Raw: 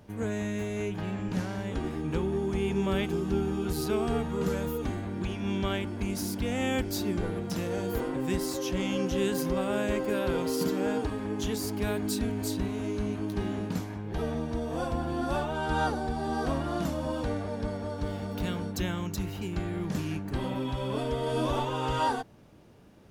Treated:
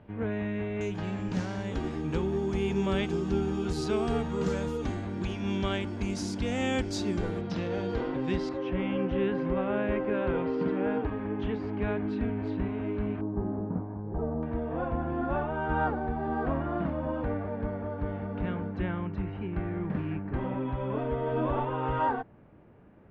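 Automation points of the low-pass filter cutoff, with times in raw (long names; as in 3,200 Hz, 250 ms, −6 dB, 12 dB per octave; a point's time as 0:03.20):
low-pass filter 24 dB per octave
2,900 Hz
from 0:00.81 7,600 Hz
from 0:07.41 4,500 Hz
from 0:08.49 2,500 Hz
from 0:13.21 1,100 Hz
from 0:14.43 2,200 Hz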